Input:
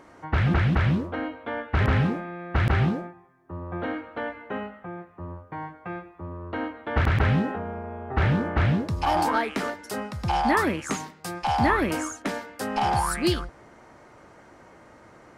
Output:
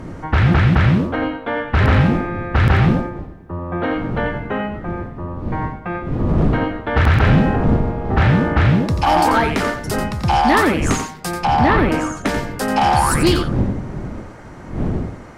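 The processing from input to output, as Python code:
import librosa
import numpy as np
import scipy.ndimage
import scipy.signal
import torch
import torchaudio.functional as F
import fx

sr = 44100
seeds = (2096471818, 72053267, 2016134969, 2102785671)

p1 = fx.dmg_wind(x, sr, seeds[0], corner_hz=210.0, level_db=-33.0)
p2 = fx.fold_sine(p1, sr, drive_db=7, ceiling_db=-7.0)
p3 = fx.lowpass(p2, sr, hz=2500.0, slope=6, at=(11.45, 12.17))
p4 = p3 + fx.echo_single(p3, sr, ms=88, db=-8.5, dry=0)
y = p4 * 10.0 ** (-1.5 / 20.0)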